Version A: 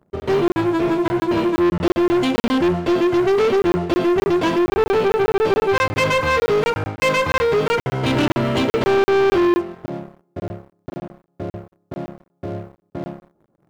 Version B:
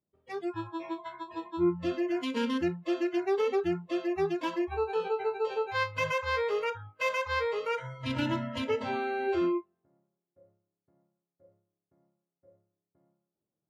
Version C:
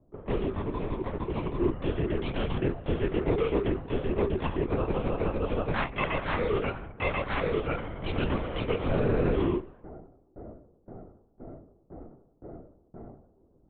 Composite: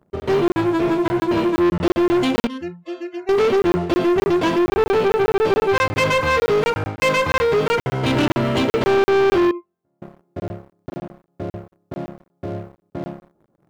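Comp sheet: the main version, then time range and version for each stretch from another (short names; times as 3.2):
A
2.47–3.29 from B
9.51–10.02 from B
not used: C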